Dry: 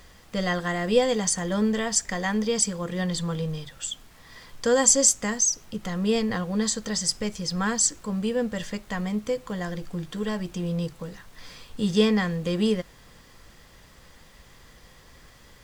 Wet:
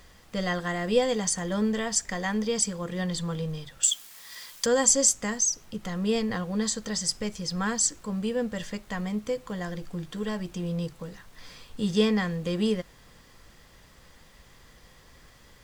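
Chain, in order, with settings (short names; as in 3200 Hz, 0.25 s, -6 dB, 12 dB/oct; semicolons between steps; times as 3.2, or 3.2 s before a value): 3.83–4.66 tilt +4.5 dB/oct; gain -2.5 dB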